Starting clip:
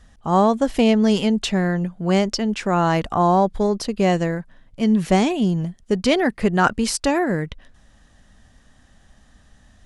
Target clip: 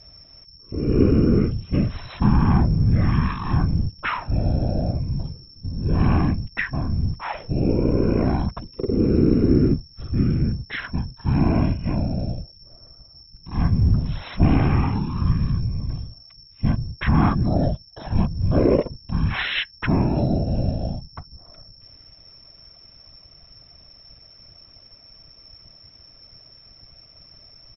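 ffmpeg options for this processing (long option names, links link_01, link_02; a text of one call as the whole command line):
ffmpeg -i in.wav -af "asetrate=15656,aresample=44100,aeval=exprs='val(0)+0.00562*sin(2*PI*5400*n/s)':channel_layout=same,afftfilt=real='hypot(re,im)*cos(2*PI*random(0))':imag='hypot(re,im)*sin(2*PI*random(1))':win_size=512:overlap=0.75,volume=5dB" out.wav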